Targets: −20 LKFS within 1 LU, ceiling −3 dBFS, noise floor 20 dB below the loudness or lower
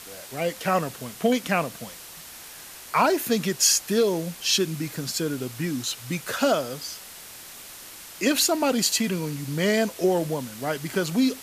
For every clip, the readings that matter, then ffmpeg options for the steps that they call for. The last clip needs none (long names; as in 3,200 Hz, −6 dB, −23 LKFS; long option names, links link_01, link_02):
background noise floor −43 dBFS; target noise floor −45 dBFS; integrated loudness −24.5 LKFS; sample peak −6.5 dBFS; target loudness −20.0 LKFS
→ -af "afftdn=noise_reduction=6:noise_floor=-43"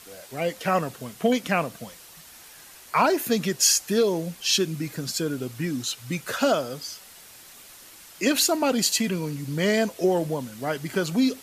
background noise floor −48 dBFS; integrated loudness −24.5 LKFS; sample peak −6.5 dBFS; target loudness −20.0 LKFS
→ -af "volume=4.5dB,alimiter=limit=-3dB:level=0:latency=1"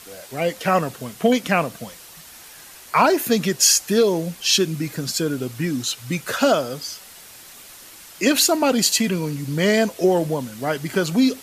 integrated loudness −20.0 LKFS; sample peak −3.0 dBFS; background noise floor −43 dBFS